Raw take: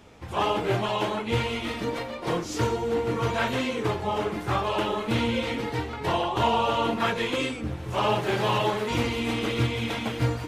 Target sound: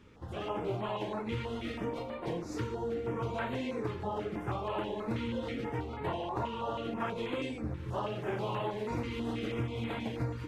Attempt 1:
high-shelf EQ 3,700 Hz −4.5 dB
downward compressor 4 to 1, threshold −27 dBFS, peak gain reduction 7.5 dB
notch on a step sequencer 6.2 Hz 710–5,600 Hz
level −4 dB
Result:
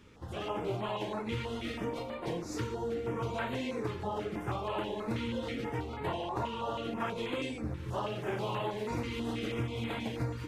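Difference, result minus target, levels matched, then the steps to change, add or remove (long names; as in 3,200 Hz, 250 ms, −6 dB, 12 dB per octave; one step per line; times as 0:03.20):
8,000 Hz band +5.0 dB
change: high-shelf EQ 3,700 Hz −11.5 dB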